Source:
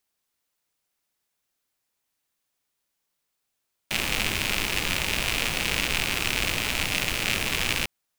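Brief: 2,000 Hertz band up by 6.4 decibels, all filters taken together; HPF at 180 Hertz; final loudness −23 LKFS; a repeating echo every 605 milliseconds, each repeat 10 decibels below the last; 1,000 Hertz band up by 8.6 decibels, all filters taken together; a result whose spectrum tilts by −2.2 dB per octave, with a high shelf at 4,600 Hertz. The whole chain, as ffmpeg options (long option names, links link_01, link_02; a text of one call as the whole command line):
ffmpeg -i in.wav -af "highpass=180,equalizer=frequency=1000:width_type=o:gain=9,equalizer=frequency=2000:width_type=o:gain=7,highshelf=frequency=4600:gain=-4,aecho=1:1:605|1210|1815|2420:0.316|0.101|0.0324|0.0104,volume=-2.5dB" out.wav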